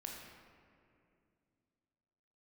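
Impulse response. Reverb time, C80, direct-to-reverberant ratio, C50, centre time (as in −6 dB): 2.5 s, 3.0 dB, −1.0 dB, 1.5 dB, 81 ms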